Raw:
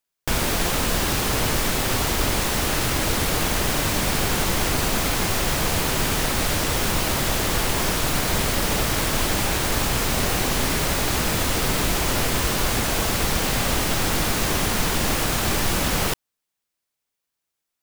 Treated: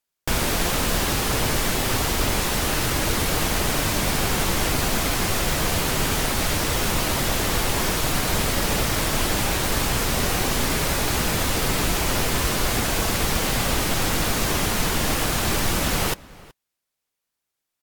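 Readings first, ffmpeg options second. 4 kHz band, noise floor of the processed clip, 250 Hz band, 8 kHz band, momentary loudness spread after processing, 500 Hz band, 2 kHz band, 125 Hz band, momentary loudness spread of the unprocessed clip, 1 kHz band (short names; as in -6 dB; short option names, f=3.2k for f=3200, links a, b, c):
-0.5 dB, -83 dBFS, 0.0 dB, -0.5 dB, 0 LU, -0.5 dB, -0.5 dB, 0.0 dB, 0 LU, -0.5 dB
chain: -filter_complex "[0:a]asplit=2[a][b];[b]adelay=373.2,volume=-21dB,highshelf=f=4k:g=-8.4[c];[a][c]amix=inputs=2:normalize=0" -ar 44100 -c:a aac -b:a 96k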